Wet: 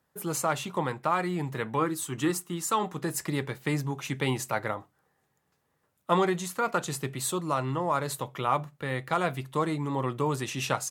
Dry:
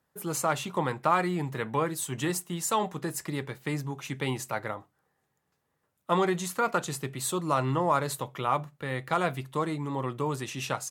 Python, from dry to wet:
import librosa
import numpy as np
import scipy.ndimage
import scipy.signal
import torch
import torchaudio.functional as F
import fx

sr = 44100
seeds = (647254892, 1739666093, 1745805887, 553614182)

y = fx.graphic_eq_31(x, sr, hz=(315, 630, 1250), db=(7, -5, 7), at=(1.79, 2.93))
y = fx.rider(y, sr, range_db=3, speed_s=0.5)